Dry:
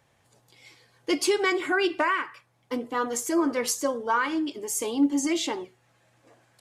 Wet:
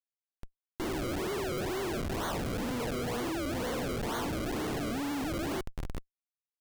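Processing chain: stepped spectrum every 0.4 s; notches 50/100/150/200 Hz; decimation with a swept rate 34×, swing 100% 2.1 Hz; in parallel at -1.5 dB: compressor, threshold -41 dBFS, peak gain reduction 14.5 dB; on the sum: Schmitt trigger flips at -43.5 dBFS; gain -2 dB

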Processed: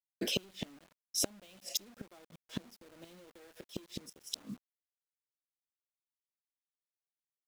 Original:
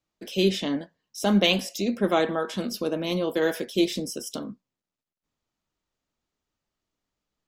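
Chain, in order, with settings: compressor 16:1, threshold -24 dBFS, peak gain reduction 9.5 dB; added harmonics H 5 -19 dB, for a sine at -14 dBFS; flipped gate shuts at -21 dBFS, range -32 dB; spectral gain 2.25–2.48, 290–2100 Hz -20 dB; bit-crush 10-bit; gain +1 dB

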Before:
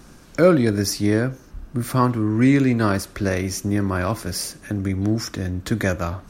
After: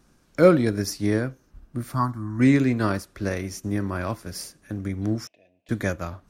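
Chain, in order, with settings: 1.94–2.4 fixed phaser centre 1100 Hz, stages 4; 5.27–5.69 double band-pass 1300 Hz, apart 2 oct; upward expander 1.5:1, over -39 dBFS

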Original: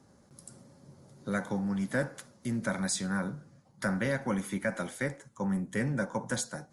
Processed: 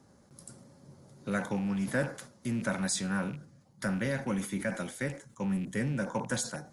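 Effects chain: rattling part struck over -39 dBFS, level -40 dBFS; 3.35–6.09 bell 1000 Hz -4 dB 2.1 oct; sustainer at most 140 dB/s

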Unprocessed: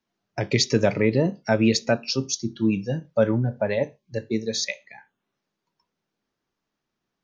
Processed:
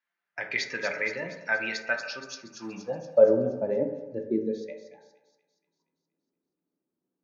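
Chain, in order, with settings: 2.51–3.05 G.711 law mismatch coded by A; band-pass sweep 1800 Hz -> 320 Hz, 2.26–3.61; thin delay 0.236 s, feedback 54%, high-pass 5100 Hz, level -4 dB; on a send at -3 dB: reverb RT60 1.2 s, pre-delay 3 ms; on the sum: gain +2.5 dB

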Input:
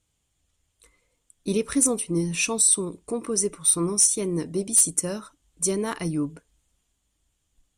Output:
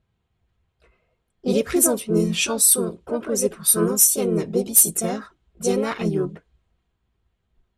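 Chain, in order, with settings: harmoniser +4 st -1 dB, +5 st -12 dB; notch comb 290 Hz; low-pass opened by the level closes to 2100 Hz, open at -14.5 dBFS; gain +3 dB

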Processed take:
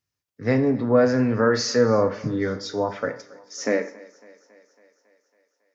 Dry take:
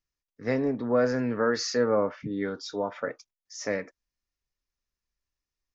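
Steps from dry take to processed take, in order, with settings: high-pass sweep 99 Hz -> 610 Hz, 3.43–3.99; on a send: thinning echo 0.276 s, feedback 65%, high-pass 180 Hz, level -22 dB; on the sum: plate-style reverb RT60 0.53 s, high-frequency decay 0.95×, DRR 9 dB; gain +4.5 dB

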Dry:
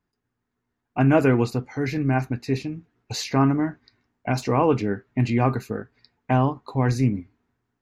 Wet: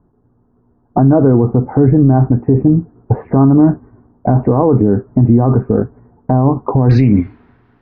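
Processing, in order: Bessel low-pass 680 Hz, order 8, from 6.89 s 2400 Hz; compressor 6:1, threshold -24 dBFS, peak gain reduction 10 dB; maximiser +26 dB; gain -1 dB

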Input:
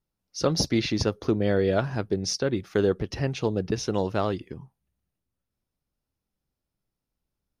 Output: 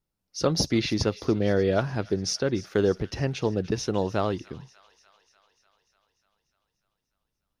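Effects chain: thin delay 0.296 s, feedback 67%, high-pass 1500 Hz, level -18 dB

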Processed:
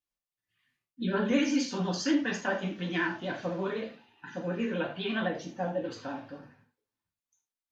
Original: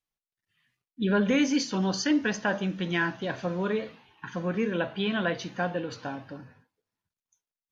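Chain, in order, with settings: vibrato 12 Hz 96 cents; 3.84–4.61 notch comb 1100 Hz; non-linear reverb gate 0.13 s falling, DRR -2 dB; 5.28–5.84 spectral gain 920–5400 Hz -8 dB; gain -7 dB

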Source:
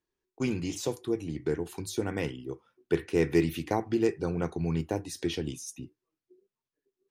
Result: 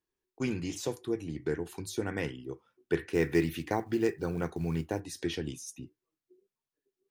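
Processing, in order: dynamic EQ 1700 Hz, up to +6 dB, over -55 dBFS, Q 2.9; 3.11–5 short-mantissa float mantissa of 4-bit; gain -2.5 dB

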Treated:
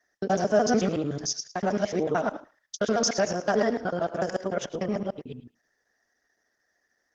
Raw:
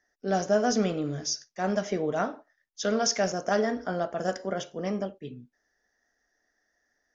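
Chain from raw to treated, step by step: local time reversal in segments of 74 ms; HPF 82 Hz 6 dB/oct; on a send: thinning echo 0.109 s, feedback 19%, high-pass 1100 Hz, level -15 dB; on the sum: added harmonics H 5 -40 dB, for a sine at -12.5 dBFS; gain +2.5 dB; Opus 16 kbps 48000 Hz

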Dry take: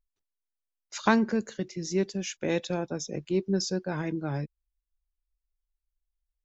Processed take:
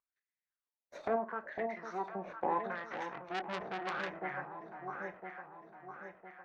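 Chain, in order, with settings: minimum comb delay 0.5 ms; treble ducked by the level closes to 1600 Hz, closed at -28 dBFS; 1.16–2.15 low shelf 220 Hz -9 dB; in parallel at +2.5 dB: compressor, threshold -31 dBFS, peak gain reduction 10 dB; on the sum: wah 0.77 Hz 610–2000 Hz, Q 4.6; echo with dull and thin repeats by turns 0.504 s, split 860 Hz, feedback 69%, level -4 dB; on a send at -10 dB: reverb RT60 0.20 s, pre-delay 23 ms; 2.75–4.16 on the sum: core saturation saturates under 2800 Hz; gain +3.5 dB

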